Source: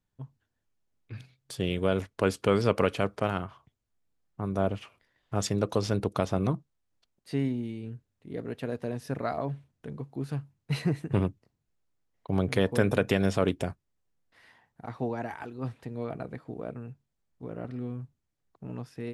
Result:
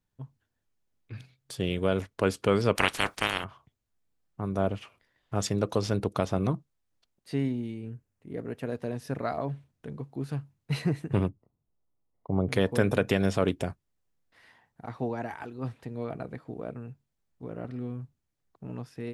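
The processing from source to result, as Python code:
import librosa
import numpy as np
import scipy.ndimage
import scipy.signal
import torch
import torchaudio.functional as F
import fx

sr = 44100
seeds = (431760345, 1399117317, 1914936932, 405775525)

y = fx.spec_clip(x, sr, under_db=29, at=(2.75, 3.43), fade=0.02)
y = fx.peak_eq(y, sr, hz=3800.0, db=-8.0, octaves=0.63, at=(7.74, 8.67))
y = fx.savgol(y, sr, points=65, at=(11.29, 12.49))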